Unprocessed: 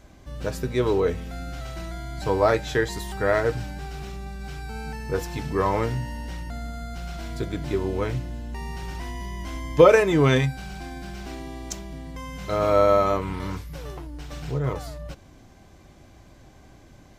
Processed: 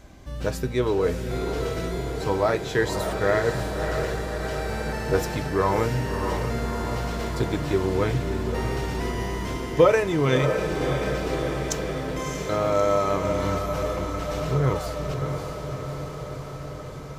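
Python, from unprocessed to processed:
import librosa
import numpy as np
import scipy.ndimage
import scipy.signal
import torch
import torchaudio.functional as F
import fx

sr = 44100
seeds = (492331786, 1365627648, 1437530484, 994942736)

y = fx.rider(x, sr, range_db=4, speed_s=0.5)
y = fx.echo_diffused(y, sr, ms=620, feedback_pct=71, wet_db=-6)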